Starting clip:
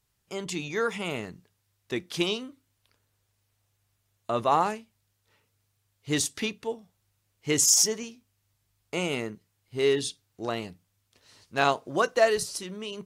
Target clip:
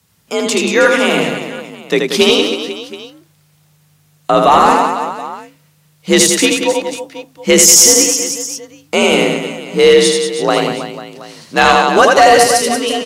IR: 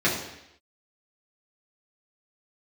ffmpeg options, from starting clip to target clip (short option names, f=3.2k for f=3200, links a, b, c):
-af "afreqshift=51,aecho=1:1:80|184|319.2|495|723.4:0.631|0.398|0.251|0.158|0.1,apsyclip=18.5dB,volume=-1.5dB"